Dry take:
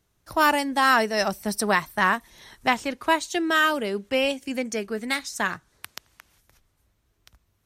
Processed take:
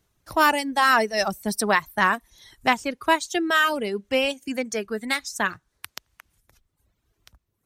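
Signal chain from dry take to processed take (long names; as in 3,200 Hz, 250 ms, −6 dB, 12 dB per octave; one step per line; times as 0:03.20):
reverb reduction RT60 0.96 s
level +1.5 dB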